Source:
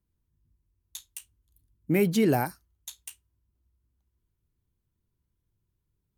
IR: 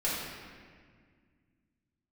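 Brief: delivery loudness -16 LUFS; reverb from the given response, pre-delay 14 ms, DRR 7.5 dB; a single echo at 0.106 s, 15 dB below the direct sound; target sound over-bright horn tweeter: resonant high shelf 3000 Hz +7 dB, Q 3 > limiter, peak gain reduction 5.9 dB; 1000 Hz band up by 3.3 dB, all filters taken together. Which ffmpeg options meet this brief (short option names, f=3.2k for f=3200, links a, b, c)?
-filter_complex "[0:a]equalizer=f=1k:t=o:g=5.5,aecho=1:1:106:0.178,asplit=2[a][b];[1:a]atrim=start_sample=2205,adelay=14[c];[b][c]afir=irnorm=-1:irlink=0,volume=-16dB[d];[a][d]amix=inputs=2:normalize=0,highshelf=f=3k:t=q:w=3:g=7,volume=13dB,alimiter=limit=-2dB:level=0:latency=1"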